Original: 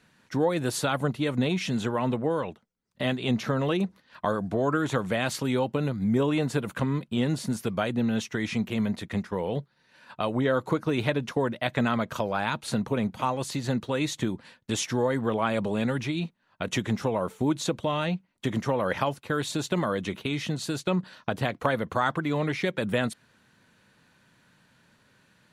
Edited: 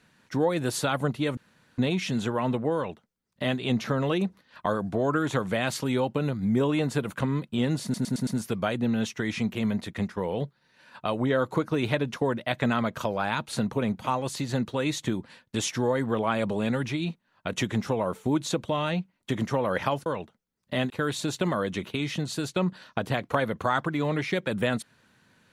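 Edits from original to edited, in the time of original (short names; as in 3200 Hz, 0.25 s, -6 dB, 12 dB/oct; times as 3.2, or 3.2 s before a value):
1.37 insert room tone 0.41 s
2.34–3.18 copy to 19.21
7.42 stutter 0.11 s, 5 plays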